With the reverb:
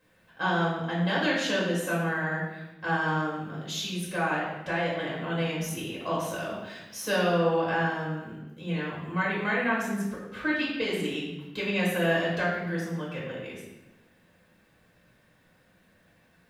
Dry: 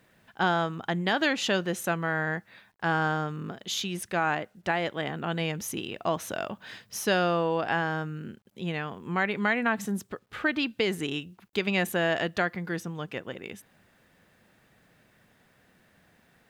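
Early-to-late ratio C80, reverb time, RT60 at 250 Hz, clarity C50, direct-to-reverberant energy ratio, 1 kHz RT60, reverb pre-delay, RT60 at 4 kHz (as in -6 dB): 4.0 dB, 1.1 s, 1.4 s, 1.5 dB, -7.0 dB, 1.0 s, 4 ms, 0.80 s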